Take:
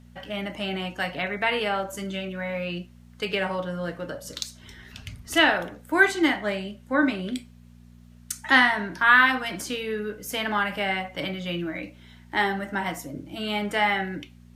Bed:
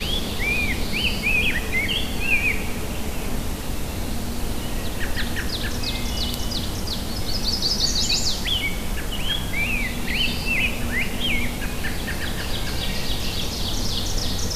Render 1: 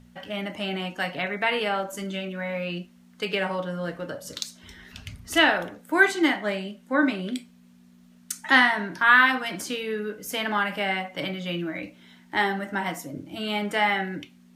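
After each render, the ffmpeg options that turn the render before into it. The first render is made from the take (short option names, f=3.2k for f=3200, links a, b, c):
-af "bandreject=f=60:t=h:w=4,bandreject=f=120:t=h:w=4"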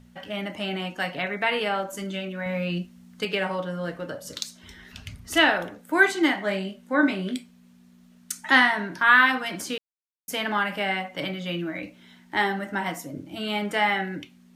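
-filter_complex "[0:a]asettb=1/sr,asplit=3[a][b][c];[a]atrim=end=2.464[d];[b]atrim=start=2.46:end=3.25,asetpts=PTS-STARTPTS,afade=t=in:d=0.004:c=qsin,afade=t=out:st=0.786:d=0.004:c=qsin,bass=f=250:g=7,treble=f=4k:g=3[e];[c]atrim=start=3.246[f];[d][e]acrossfade=d=0.004:c1=hsin:c2=qsin[g];[g][f]acrossfade=d=0.004:c1=qsin:c2=hsin,asettb=1/sr,asplit=3[h][i][j];[h]atrim=end=6.354[k];[i]atrim=start=6.35:end=7.36,asetpts=PTS-STARTPTS,afade=t=in:d=0.004:c=qsin,afade=t=out:st=1.006:d=0.004:c=qsin,asplit=2[l][m];[m]adelay=21,volume=-7dB[n];[l][n]amix=inputs=2:normalize=0,atrim=end_sample=44541[o];[j]atrim=start=7.356[p];[k][o]acrossfade=d=0.004:c1=hsin:c2=qsin[q];[q][p]acrossfade=d=0.004:c1=qsin:c2=hsin,asplit=3[r][s][t];[r]atrim=end=9.78,asetpts=PTS-STARTPTS,afade=t=out:st=9.776:d=0.004:c=hsin[u];[s]atrim=start=9.78:end=10.28,asetpts=PTS-STARTPTS,volume=0[v];[t]atrim=start=10.28,asetpts=PTS-STARTPTS,afade=t=in:d=0.004:c=hsin[w];[u][v][w]concat=n=3:v=0:a=1"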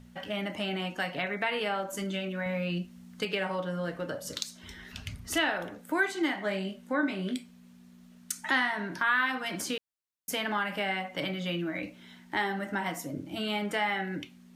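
-af "acompressor=threshold=-31dB:ratio=2"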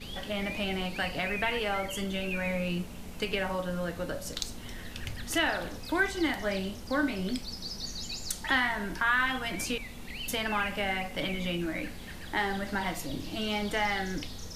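-filter_complex "[1:a]volume=-17dB[a];[0:a][a]amix=inputs=2:normalize=0"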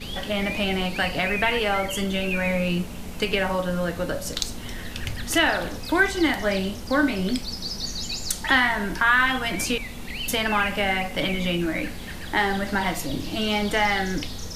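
-af "volume=7.5dB"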